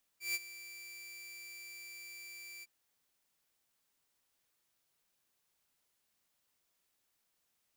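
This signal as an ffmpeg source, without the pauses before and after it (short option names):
-f lavfi -i "aevalsrc='0.0355*(2*mod(2340*t,1)-1)':d=2.46:s=44100,afade=t=in:d=0.147,afade=t=out:st=0.147:d=0.035:silence=0.158,afade=t=out:st=2.43:d=0.03"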